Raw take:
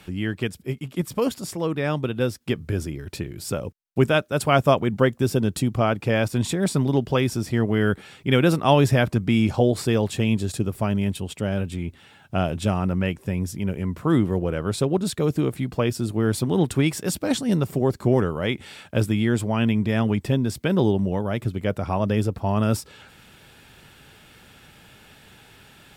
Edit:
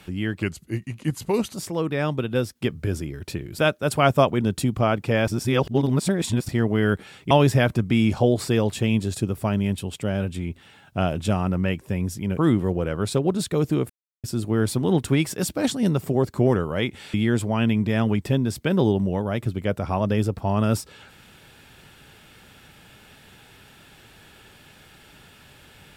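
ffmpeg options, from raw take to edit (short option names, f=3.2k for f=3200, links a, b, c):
-filter_complex "[0:a]asplit=12[a][b][c][d][e][f][g][h][i][j][k][l];[a]atrim=end=0.424[m];[b]atrim=start=0.42:end=1.4,asetpts=PTS-STARTPTS,asetrate=38367,aresample=44100[n];[c]atrim=start=1.396:end=3.442[o];[d]atrim=start=4.078:end=4.902[p];[e]atrim=start=5.388:end=6.262[q];[f]atrim=start=6.258:end=7.472,asetpts=PTS-STARTPTS,areverse[r];[g]atrim=start=7.468:end=8.292[s];[h]atrim=start=8.678:end=13.752[t];[i]atrim=start=14.038:end=15.56,asetpts=PTS-STARTPTS,afade=t=out:st=1.518:d=0.004:c=hsin[u];[j]atrim=start=15.56:end=15.9,asetpts=PTS-STARTPTS,volume=0[v];[k]atrim=start=15.9:end=18.802,asetpts=PTS-STARTPTS,afade=t=in:d=0.004:c=hsin[w];[l]atrim=start=19.128[x];[m][n]acrossfade=d=0.004:c1=hsin:c2=hsin[y];[y][o]acrossfade=d=0.004:c1=hsin:c2=hsin[z];[z][p]acrossfade=d=0.004:c1=hsin:c2=hsin[aa];[aa][q]acrossfade=d=0.004:c1=hsin:c2=hsin[ab];[ab][r]acrossfade=d=0.004:c1=hsin:c2=hsin[ac];[ac][s]acrossfade=d=0.004:c1=hsin:c2=hsin[ad];[ad][t]acrossfade=d=0.004:c1=hsin:c2=hsin[ae];[u][v][w]concat=n=3:v=0:a=1[af];[ae][af]acrossfade=d=0.004:c1=hsin:c2=hsin[ag];[ag][x]acrossfade=d=0.004:c1=hsin:c2=hsin"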